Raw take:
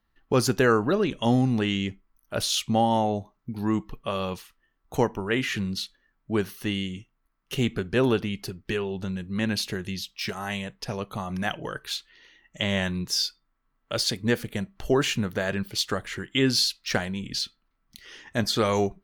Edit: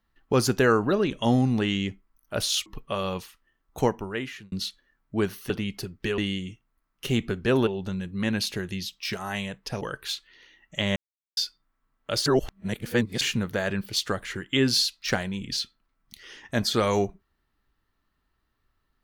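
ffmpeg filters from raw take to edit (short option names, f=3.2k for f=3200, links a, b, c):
-filter_complex "[0:a]asplit=11[a][b][c][d][e][f][g][h][i][j][k];[a]atrim=end=2.662[l];[b]atrim=start=3.818:end=5.68,asetpts=PTS-STARTPTS,afade=t=out:st=1.192:d=0.67[m];[c]atrim=start=5.68:end=6.662,asetpts=PTS-STARTPTS,afade=t=in:d=0.004:c=hsin[n];[d]atrim=start=8.148:end=8.832[o];[e]atrim=start=6.658:end=8.152[p];[f]atrim=start=8.828:end=10.972[q];[g]atrim=start=11.628:end=12.78,asetpts=PTS-STARTPTS,afade=t=out:st=1.148:d=0.004:c=hsin[r];[h]atrim=start=12.78:end=13.19,asetpts=PTS-STARTPTS,volume=0[s];[i]atrim=start=13.19:end=14.082,asetpts=PTS-STARTPTS,afade=t=in:d=0.004:c=hsin[t];[j]atrim=start=14.078:end=15.032,asetpts=PTS-STARTPTS,areverse[u];[k]atrim=start=15.028[v];[m][n]concat=n=2:v=0:a=1[w];[l][w]acrossfade=d=0.004:c1=hsin:c2=hsin[x];[x][o]acrossfade=d=0.004:c1=hsin:c2=hsin[y];[y][p]acrossfade=d=0.004:c1=hsin:c2=hsin[z];[z][q]acrossfade=d=0.004:c1=hsin:c2=hsin[aa];[r][s][t]concat=n=3:v=0:a=1[ab];[aa][ab]acrossfade=d=0.004:c1=hsin:c2=hsin[ac];[ac][u]acrossfade=d=0.004:c1=hsin:c2=hsin[ad];[ad][v]acrossfade=d=0.004:c1=hsin:c2=hsin"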